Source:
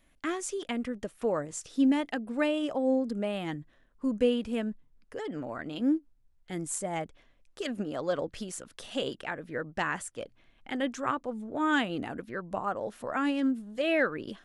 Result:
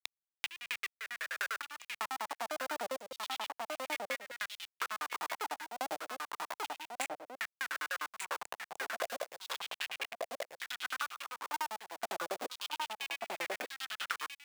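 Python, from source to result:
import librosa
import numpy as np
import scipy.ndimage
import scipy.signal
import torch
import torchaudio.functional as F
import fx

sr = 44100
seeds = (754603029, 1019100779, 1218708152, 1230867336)

p1 = fx.wiener(x, sr, points=41)
p2 = fx.backlash(p1, sr, play_db=-35.0)
p3 = p1 + (p2 * 10.0 ** (-3.5 / 20.0))
p4 = fx.tube_stage(p3, sr, drive_db=36.0, bias=0.35)
p5 = fx.granulator(p4, sr, seeds[0], grain_ms=69.0, per_s=10.0, spray_ms=342.0, spread_st=0)
p6 = fx.schmitt(p5, sr, flips_db=-54.5)
p7 = fx.filter_lfo_highpass(p6, sr, shape='saw_down', hz=0.32, low_hz=520.0, high_hz=3800.0, q=3.3)
p8 = fx.step_gate(p7, sr, bpm=65, pattern='xx.x..x.xxx', floor_db=-12.0, edge_ms=4.5)
p9 = p8 + 10.0 ** (-7.5 / 20.0) * np.pad(p8, (int(1189 * sr / 1000.0), 0))[:len(p8)]
p10 = fx.band_squash(p9, sr, depth_pct=100)
y = p10 * 10.0 ** (12.0 / 20.0)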